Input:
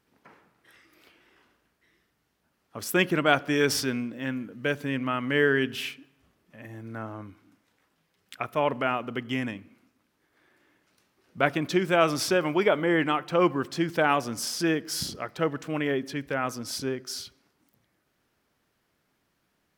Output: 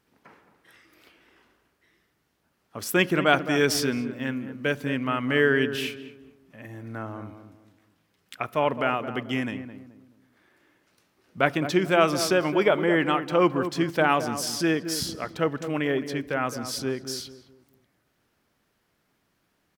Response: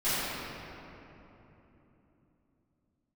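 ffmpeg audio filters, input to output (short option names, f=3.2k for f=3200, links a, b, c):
-filter_complex "[0:a]asplit=2[a][b];[b]adelay=215,lowpass=f=990:p=1,volume=-9dB,asplit=2[c][d];[d]adelay=215,lowpass=f=990:p=1,volume=0.36,asplit=2[e][f];[f]adelay=215,lowpass=f=990:p=1,volume=0.36,asplit=2[g][h];[h]adelay=215,lowpass=f=990:p=1,volume=0.36[i];[a][c][e][g][i]amix=inputs=5:normalize=0,volume=1.5dB"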